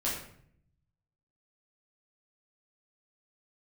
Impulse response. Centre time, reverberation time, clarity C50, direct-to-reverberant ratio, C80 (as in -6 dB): 45 ms, 0.65 s, 3.0 dB, -7.5 dB, 6.5 dB